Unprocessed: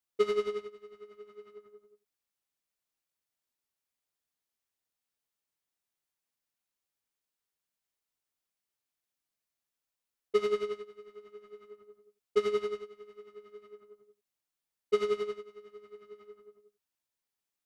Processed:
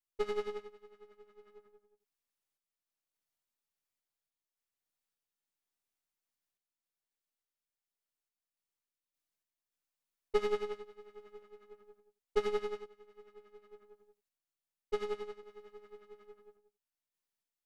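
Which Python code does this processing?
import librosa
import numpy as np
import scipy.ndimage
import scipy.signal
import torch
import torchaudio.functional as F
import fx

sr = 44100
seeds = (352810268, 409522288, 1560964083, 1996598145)

y = np.where(x < 0.0, 10.0 ** (-7.0 / 20.0) * x, x)
y = fx.tremolo_random(y, sr, seeds[0], hz=3.5, depth_pct=55)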